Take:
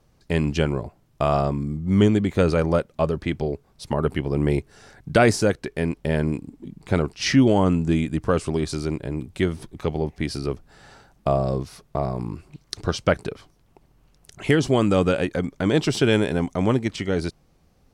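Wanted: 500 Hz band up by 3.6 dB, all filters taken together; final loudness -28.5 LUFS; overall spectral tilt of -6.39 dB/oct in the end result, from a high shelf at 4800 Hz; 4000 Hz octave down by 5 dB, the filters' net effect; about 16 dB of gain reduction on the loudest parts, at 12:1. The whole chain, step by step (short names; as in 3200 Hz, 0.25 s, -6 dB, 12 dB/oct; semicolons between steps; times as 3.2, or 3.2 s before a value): bell 500 Hz +4.5 dB; bell 4000 Hz -3.5 dB; high shelf 4800 Hz -7 dB; compressor 12:1, threshold -27 dBFS; gain +5 dB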